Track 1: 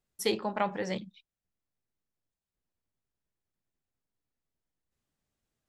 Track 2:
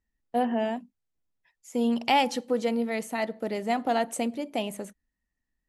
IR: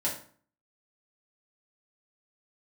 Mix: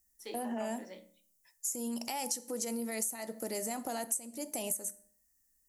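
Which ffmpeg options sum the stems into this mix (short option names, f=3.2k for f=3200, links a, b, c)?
-filter_complex "[0:a]highpass=f=240:w=0.5412,highpass=f=240:w=1.3066,volume=-19dB,asplit=2[a][b];[b]volume=-7.5dB[c];[1:a]acompressor=threshold=-27dB:ratio=6,alimiter=level_in=1.5dB:limit=-24dB:level=0:latency=1:release=17,volume=-1.5dB,aexciter=amount=11:drive=6.7:freq=5.3k,volume=-3dB,asplit=2[d][e];[e]volume=-18.5dB[f];[2:a]atrim=start_sample=2205[g];[c][f]amix=inputs=2:normalize=0[h];[h][g]afir=irnorm=-1:irlink=0[i];[a][d][i]amix=inputs=3:normalize=0,equalizer=f=180:w=2.5:g=-3,acompressor=threshold=-32dB:ratio=10"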